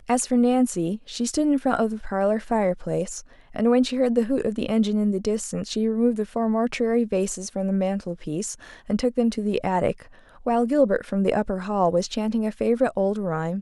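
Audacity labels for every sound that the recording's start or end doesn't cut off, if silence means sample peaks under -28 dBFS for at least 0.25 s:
3.560000	8.540000	sound
8.900000	9.920000	sound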